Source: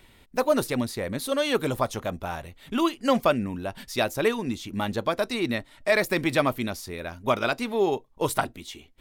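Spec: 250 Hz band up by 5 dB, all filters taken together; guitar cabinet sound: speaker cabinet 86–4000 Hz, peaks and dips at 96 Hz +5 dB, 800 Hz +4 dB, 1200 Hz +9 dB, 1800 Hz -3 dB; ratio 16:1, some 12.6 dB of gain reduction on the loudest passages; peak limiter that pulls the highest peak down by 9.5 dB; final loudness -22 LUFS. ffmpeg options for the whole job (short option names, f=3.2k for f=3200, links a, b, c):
-af "equalizer=f=250:t=o:g=6,acompressor=threshold=-28dB:ratio=16,alimiter=limit=-24dB:level=0:latency=1,highpass=86,equalizer=f=96:t=q:w=4:g=5,equalizer=f=800:t=q:w=4:g=4,equalizer=f=1.2k:t=q:w=4:g=9,equalizer=f=1.8k:t=q:w=4:g=-3,lowpass=f=4k:w=0.5412,lowpass=f=4k:w=1.3066,volume=13dB"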